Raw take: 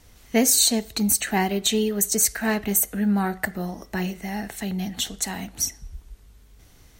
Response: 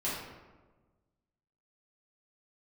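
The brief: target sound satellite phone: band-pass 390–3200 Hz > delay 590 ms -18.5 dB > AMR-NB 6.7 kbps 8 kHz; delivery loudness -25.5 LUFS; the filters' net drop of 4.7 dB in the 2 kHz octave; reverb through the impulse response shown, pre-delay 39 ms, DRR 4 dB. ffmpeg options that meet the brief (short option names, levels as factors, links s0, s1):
-filter_complex "[0:a]equalizer=f=2000:t=o:g=-5,asplit=2[s0][s1];[1:a]atrim=start_sample=2205,adelay=39[s2];[s1][s2]afir=irnorm=-1:irlink=0,volume=0.316[s3];[s0][s3]amix=inputs=2:normalize=0,highpass=390,lowpass=3200,aecho=1:1:590:0.119,volume=2.11" -ar 8000 -c:a libopencore_amrnb -b:a 6700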